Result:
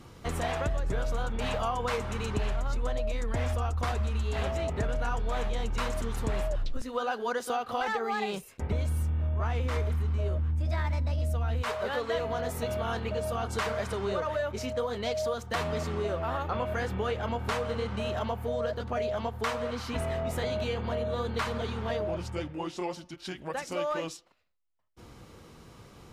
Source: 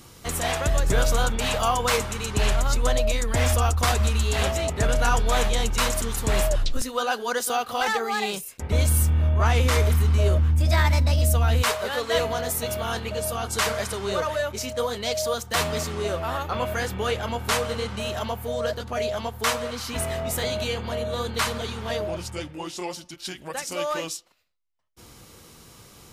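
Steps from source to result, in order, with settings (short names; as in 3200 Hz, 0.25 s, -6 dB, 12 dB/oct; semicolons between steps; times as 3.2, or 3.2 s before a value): LPF 1700 Hz 6 dB/oct; compressor 5:1, threshold -27 dBFS, peak gain reduction 10 dB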